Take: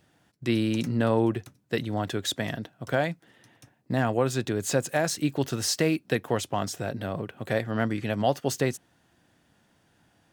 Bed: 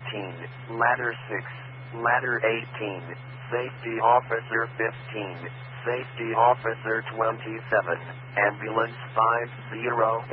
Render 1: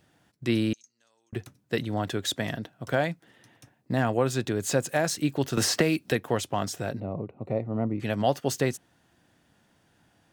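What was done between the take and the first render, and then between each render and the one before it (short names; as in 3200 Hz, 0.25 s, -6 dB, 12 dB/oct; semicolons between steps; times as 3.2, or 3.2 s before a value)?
0.73–1.33 band-pass 6400 Hz, Q 16; 5.57–6.12 three-band squash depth 100%; 7–8 running mean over 27 samples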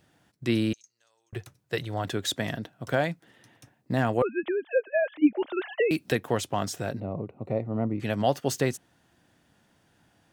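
0.72–2.05 bell 240 Hz -14 dB 0.58 oct; 4.22–5.91 sine-wave speech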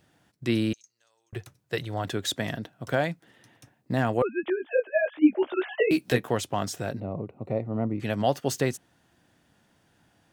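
4.45–6.29 doubler 16 ms -3.5 dB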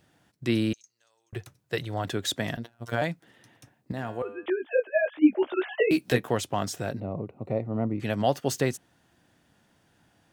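2.57–3.02 robotiser 117 Hz; 3.92–4.46 resonator 100 Hz, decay 0.67 s, mix 70%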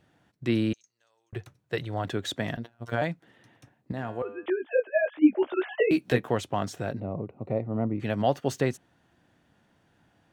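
high shelf 5200 Hz -11 dB; notch 5000 Hz, Q 19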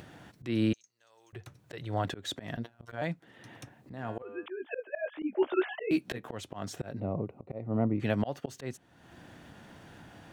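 auto swell 0.221 s; upward compressor, threshold -38 dBFS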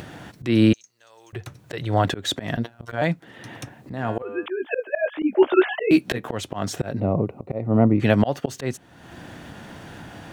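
gain +11.5 dB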